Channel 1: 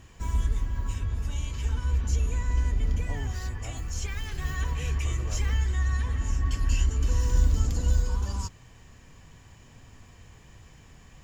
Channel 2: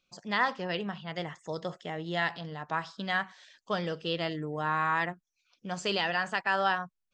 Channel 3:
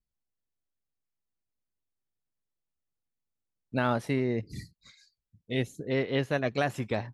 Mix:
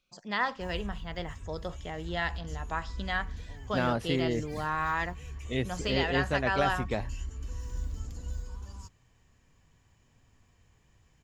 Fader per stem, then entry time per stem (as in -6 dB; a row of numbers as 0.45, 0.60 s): -13.5, -2.0, -1.5 dB; 0.40, 0.00, 0.00 s